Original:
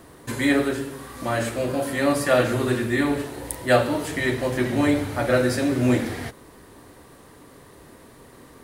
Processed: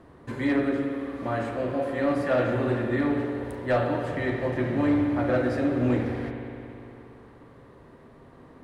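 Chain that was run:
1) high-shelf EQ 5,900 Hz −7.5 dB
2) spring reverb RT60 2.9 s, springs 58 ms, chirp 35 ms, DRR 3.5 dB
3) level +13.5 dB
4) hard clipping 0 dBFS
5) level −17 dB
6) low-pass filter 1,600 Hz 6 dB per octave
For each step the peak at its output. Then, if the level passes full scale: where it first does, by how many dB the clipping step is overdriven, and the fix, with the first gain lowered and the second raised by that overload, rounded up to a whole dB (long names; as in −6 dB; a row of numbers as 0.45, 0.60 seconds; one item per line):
−5.0, −5.0, +8.5, 0.0, −17.0, −17.0 dBFS
step 3, 8.5 dB
step 3 +4.5 dB, step 5 −8 dB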